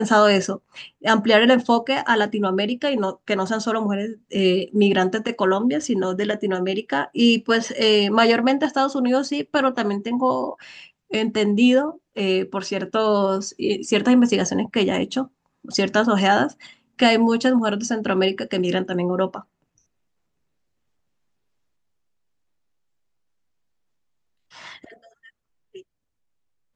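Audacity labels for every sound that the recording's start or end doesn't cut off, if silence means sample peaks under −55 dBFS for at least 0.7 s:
24.510000	25.830000	sound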